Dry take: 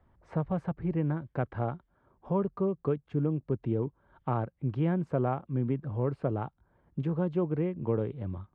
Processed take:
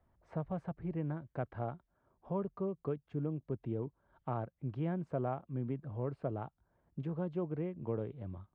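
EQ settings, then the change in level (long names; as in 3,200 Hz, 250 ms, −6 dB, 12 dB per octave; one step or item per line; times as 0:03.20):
parametric band 660 Hz +5 dB 0.27 octaves
−8.0 dB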